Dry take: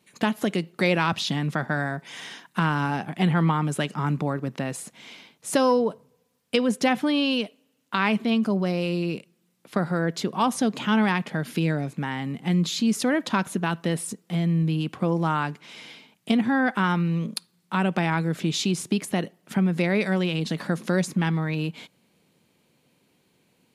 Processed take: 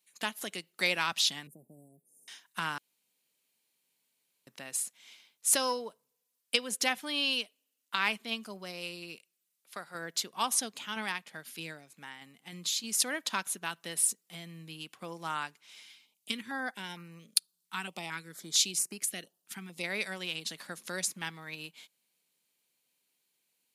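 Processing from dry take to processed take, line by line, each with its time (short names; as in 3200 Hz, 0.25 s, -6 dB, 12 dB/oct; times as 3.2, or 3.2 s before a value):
1.47–2.28 inverse Chebyshev band-stop 1400–3700 Hz, stop band 70 dB
2.78–4.47 room tone
9.16–9.95 low shelf 350 Hz -9 dB
10.65–12.98 tremolo saw down 3.2 Hz, depth 40%
15.83–19.84 stepped notch 4.4 Hz 560–3500 Hz
whole clip: tilt +4.5 dB/oct; upward expander 1.5:1, over -41 dBFS; gain -6 dB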